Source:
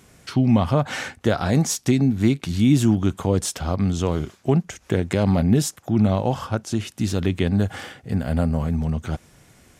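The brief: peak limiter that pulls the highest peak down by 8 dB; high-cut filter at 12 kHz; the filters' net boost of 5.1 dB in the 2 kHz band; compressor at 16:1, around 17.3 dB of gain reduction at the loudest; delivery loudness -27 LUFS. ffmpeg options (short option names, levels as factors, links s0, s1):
-af "lowpass=12000,equalizer=f=2000:t=o:g=6.5,acompressor=threshold=0.0316:ratio=16,volume=3.16,alimiter=limit=0.188:level=0:latency=1"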